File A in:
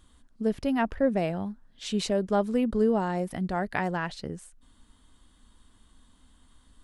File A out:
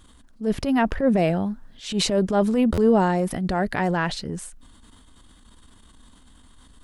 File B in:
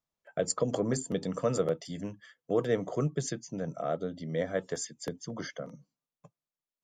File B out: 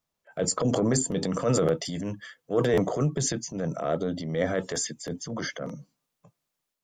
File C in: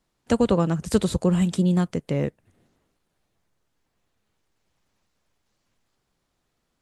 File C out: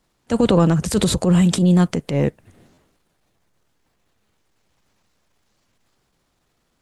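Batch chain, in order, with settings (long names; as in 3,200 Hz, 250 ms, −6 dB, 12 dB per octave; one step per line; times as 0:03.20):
transient designer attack −9 dB, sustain +5 dB
buffer that repeats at 0:02.73, samples 512, times 3
level +7 dB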